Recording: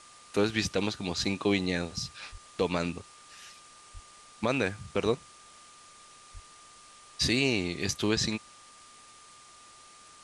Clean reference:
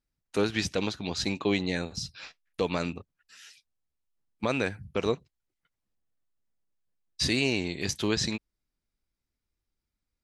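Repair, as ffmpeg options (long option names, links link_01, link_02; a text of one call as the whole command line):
ffmpeg -i in.wav -filter_complex "[0:a]bandreject=frequency=1200:width=30,asplit=3[link_01][link_02][link_03];[link_01]afade=type=out:start_time=2.31:duration=0.02[link_04];[link_02]highpass=frequency=140:width=0.5412,highpass=frequency=140:width=1.3066,afade=type=in:start_time=2.31:duration=0.02,afade=type=out:start_time=2.43:duration=0.02[link_05];[link_03]afade=type=in:start_time=2.43:duration=0.02[link_06];[link_04][link_05][link_06]amix=inputs=3:normalize=0,asplit=3[link_07][link_08][link_09];[link_07]afade=type=out:start_time=3.93:duration=0.02[link_10];[link_08]highpass=frequency=140:width=0.5412,highpass=frequency=140:width=1.3066,afade=type=in:start_time=3.93:duration=0.02,afade=type=out:start_time=4.05:duration=0.02[link_11];[link_09]afade=type=in:start_time=4.05:duration=0.02[link_12];[link_10][link_11][link_12]amix=inputs=3:normalize=0,asplit=3[link_13][link_14][link_15];[link_13]afade=type=out:start_time=6.33:duration=0.02[link_16];[link_14]highpass=frequency=140:width=0.5412,highpass=frequency=140:width=1.3066,afade=type=in:start_time=6.33:duration=0.02,afade=type=out:start_time=6.45:duration=0.02[link_17];[link_15]afade=type=in:start_time=6.45:duration=0.02[link_18];[link_16][link_17][link_18]amix=inputs=3:normalize=0,afwtdn=0.0025" out.wav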